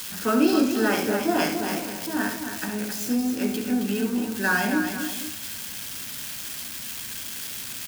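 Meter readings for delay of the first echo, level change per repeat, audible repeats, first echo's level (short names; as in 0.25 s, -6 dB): 71 ms, no steady repeat, 3, -8.5 dB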